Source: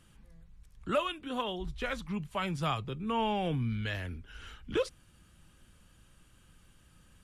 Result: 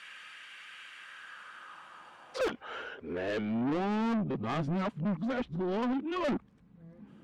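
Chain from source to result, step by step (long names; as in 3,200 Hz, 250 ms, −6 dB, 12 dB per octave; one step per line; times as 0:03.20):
played backwards from end to start
band-pass filter sweep 2,100 Hz → 230 Hz, 0:00.89–0:04.04
mid-hump overdrive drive 30 dB, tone 6,700 Hz, clips at −26.5 dBFS
level +3 dB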